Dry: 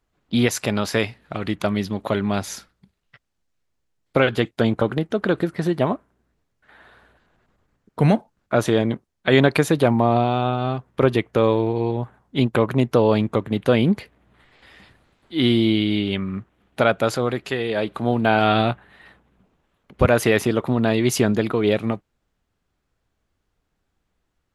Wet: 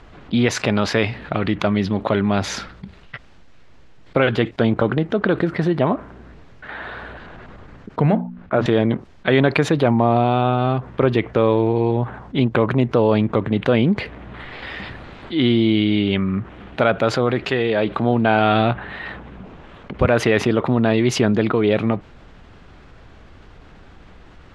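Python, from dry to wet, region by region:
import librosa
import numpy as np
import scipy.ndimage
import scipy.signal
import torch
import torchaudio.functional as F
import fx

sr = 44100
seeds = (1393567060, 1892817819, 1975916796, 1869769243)

y = fx.chain(x, sr, fx.air_absorb(metres=200.0),
    fx.hum_notches(base_hz=60, count=5),
    fx.resample_linear(factor=4), at=(8.02, 8.66))
y = scipy.signal.sosfilt(scipy.signal.butter(2, 3500.0, 'lowpass', fs=sr, output='sos'), y)
y = fx.env_flatten(y, sr, amount_pct=50)
y = y * 10.0 ** (-1.0 / 20.0)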